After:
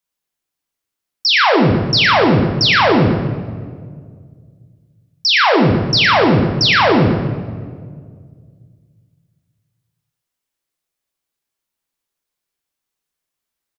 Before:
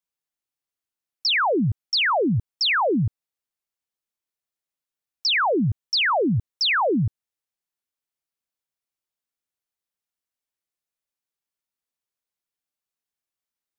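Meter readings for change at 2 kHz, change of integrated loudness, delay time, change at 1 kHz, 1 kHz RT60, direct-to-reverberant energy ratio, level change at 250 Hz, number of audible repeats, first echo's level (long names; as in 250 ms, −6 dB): +9.0 dB, +8.5 dB, 117 ms, +9.0 dB, 1.6 s, 1.0 dB, +10.0 dB, 1, −9.5 dB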